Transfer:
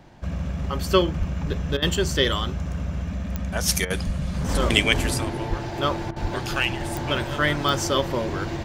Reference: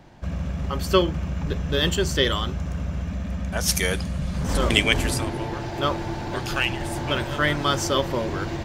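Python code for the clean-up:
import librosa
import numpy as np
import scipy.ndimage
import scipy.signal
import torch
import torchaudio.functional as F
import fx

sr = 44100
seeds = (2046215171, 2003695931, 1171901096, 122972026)

y = fx.fix_declick_ar(x, sr, threshold=10.0)
y = fx.fix_deplosive(y, sr, at_s=(1.18, 4.05, 5.49, 6.21))
y = fx.fix_interpolate(y, sr, at_s=(1.77, 3.85, 6.11), length_ms=51.0)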